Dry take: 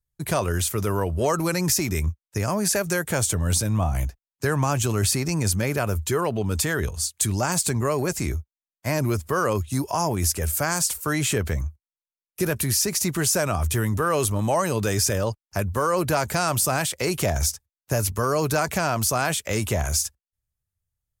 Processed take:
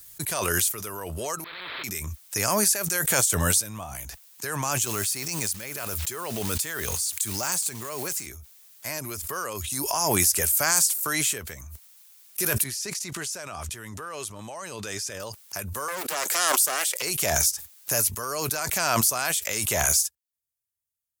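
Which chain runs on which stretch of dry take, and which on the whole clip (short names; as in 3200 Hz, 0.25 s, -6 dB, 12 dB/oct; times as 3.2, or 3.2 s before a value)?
1.44–1.84 delta modulation 16 kbps, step -22 dBFS + fixed phaser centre 770 Hz, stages 6 + spectral compressor 4:1
4.85–8.27 block floating point 5-bit + compressor 3:1, threshold -25 dBFS
12.64–15.2 level quantiser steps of 9 dB + air absorption 59 m
15.88–17.02 HPF 360 Hz 24 dB/oct + Doppler distortion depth 0.53 ms
whole clip: tilt +3.5 dB/oct; backwards sustainer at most 20 dB/s; gain -9 dB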